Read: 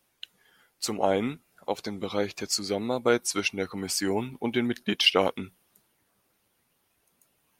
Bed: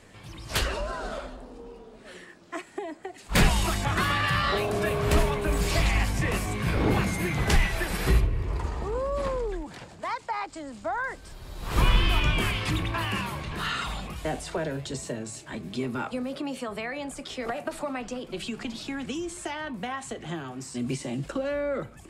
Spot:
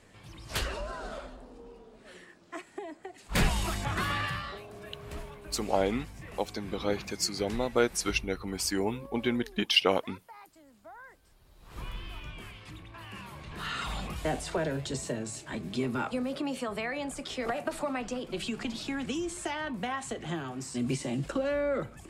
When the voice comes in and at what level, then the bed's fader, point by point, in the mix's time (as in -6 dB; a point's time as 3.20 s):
4.70 s, -2.5 dB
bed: 4.21 s -5.5 dB
4.63 s -19 dB
12.88 s -19 dB
14.02 s -0.5 dB